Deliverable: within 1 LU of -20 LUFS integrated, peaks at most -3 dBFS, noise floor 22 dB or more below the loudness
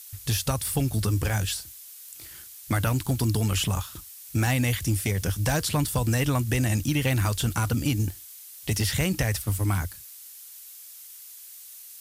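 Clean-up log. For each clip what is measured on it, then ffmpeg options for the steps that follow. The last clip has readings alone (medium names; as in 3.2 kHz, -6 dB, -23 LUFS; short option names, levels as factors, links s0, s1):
noise floor -45 dBFS; noise floor target -48 dBFS; loudness -26.0 LUFS; peak level -15.0 dBFS; loudness target -20.0 LUFS
-> -af "afftdn=nr=6:nf=-45"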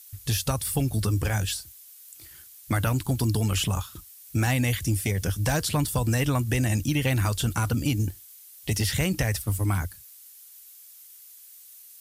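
noise floor -49 dBFS; loudness -26.5 LUFS; peak level -15.5 dBFS; loudness target -20.0 LUFS
-> -af "volume=2.11"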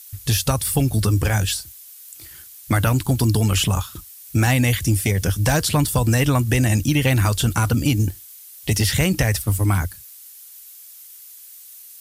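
loudness -20.0 LUFS; peak level -9.0 dBFS; noise floor -43 dBFS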